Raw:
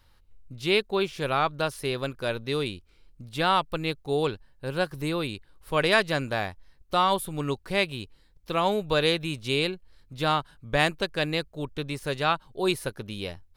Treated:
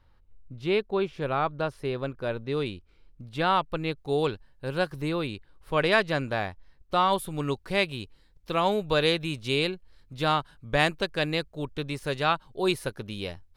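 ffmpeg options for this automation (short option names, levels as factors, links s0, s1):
-af "asetnsamples=n=441:p=0,asendcmd='2.57 lowpass f 2600;3.97 lowpass f 6900;5 lowpass f 3400;7.13 lowpass f 8400',lowpass=f=1300:p=1"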